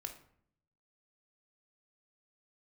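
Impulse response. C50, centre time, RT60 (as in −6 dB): 10.0 dB, 13 ms, 0.65 s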